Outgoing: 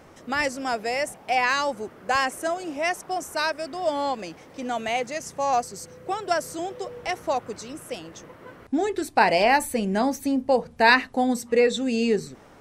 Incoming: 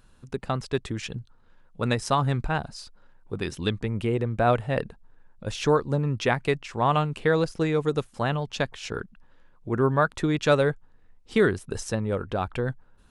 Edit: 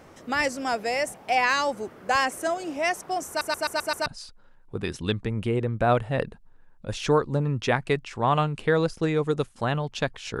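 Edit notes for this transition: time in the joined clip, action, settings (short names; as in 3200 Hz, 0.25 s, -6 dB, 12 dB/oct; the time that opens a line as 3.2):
outgoing
3.28 stutter in place 0.13 s, 6 plays
4.06 switch to incoming from 2.64 s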